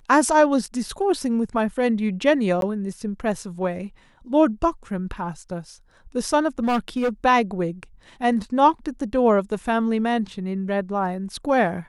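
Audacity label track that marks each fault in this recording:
2.610000	2.620000	gap 12 ms
6.590000	7.090000	clipped -18 dBFS

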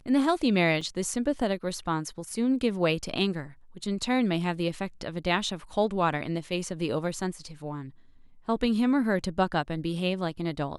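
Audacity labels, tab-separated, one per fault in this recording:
0.810000	0.810000	gap 3.1 ms

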